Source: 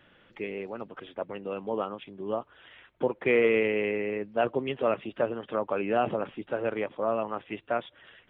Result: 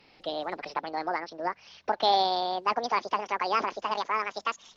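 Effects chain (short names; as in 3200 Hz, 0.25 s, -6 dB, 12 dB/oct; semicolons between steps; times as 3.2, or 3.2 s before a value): speed glide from 151% -> 197%; recorder AGC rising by 7.7 dB/s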